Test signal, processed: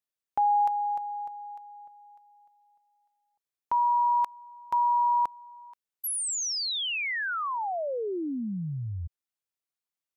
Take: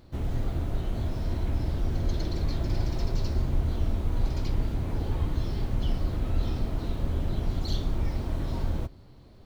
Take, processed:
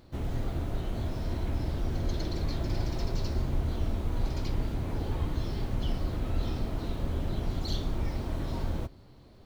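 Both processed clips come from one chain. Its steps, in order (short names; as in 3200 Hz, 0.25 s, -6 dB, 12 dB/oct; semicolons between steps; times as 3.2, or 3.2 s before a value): low shelf 150 Hz -4 dB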